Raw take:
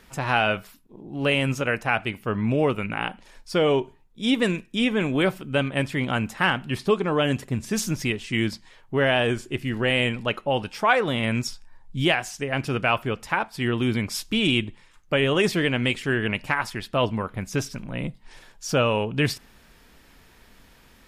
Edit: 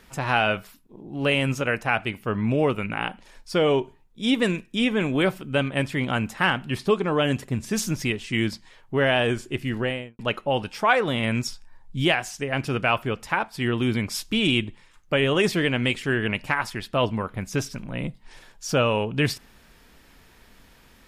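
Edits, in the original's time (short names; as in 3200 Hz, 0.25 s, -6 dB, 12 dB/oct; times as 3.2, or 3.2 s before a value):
9.72–10.19 studio fade out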